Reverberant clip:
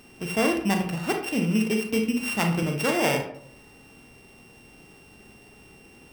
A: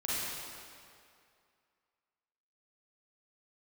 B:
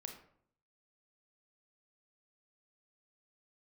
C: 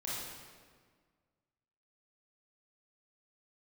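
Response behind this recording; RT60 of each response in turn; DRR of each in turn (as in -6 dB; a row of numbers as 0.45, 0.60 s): B; 2.4, 0.65, 1.7 s; -9.0, 3.5, -7.5 dB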